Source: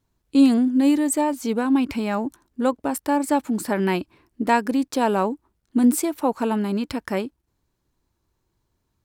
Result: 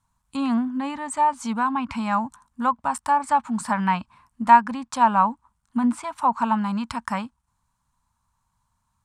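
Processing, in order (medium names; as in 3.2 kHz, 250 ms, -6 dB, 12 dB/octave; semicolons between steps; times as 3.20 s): low-pass that closes with the level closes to 2.8 kHz, closed at -16 dBFS; FFT filter 230 Hz 0 dB, 350 Hz -26 dB, 1 kHz +12 dB, 1.9 kHz 0 dB, 4.9 kHz -1 dB, 8.9 kHz +9 dB, 14 kHz -4 dB; trim -1 dB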